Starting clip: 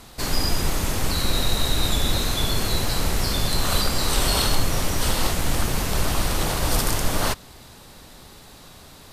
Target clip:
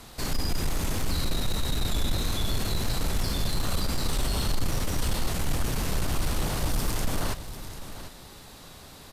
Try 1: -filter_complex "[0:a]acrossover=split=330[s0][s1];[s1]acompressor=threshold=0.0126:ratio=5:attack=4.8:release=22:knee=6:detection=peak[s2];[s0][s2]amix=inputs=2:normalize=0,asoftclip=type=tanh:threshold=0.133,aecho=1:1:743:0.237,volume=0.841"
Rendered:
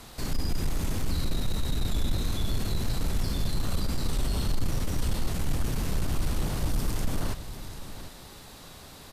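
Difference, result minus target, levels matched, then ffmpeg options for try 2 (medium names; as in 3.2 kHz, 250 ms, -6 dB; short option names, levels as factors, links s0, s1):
compression: peak gain reduction +5.5 dB
-filter_complex "[0:a]acrossover=split=330[s0][s1];[s1]acompressor=threshold=0.0282:ratio=5:attack=4.8:release=22:knee=6:detection=peak[s2];[s0][s2]amix=inputs=2:normalize=0,asoftclip=type=tanh:threshold=0.133,aecho=1:1:743:0.237,volume=0.841"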